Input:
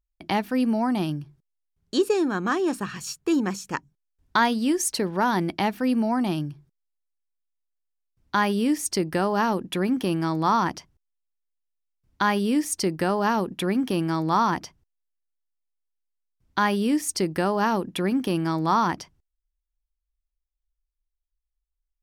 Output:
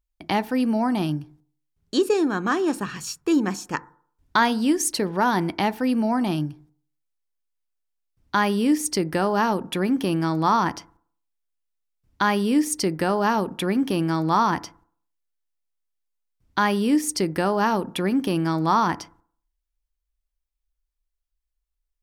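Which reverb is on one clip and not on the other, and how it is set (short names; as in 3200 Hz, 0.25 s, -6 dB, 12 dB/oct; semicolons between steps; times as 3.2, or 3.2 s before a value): FDN reverb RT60 0.54 s, low-frequency decay 0.95×, high-frequency decay 0.25×, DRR 16 dB; gain +1.5 dB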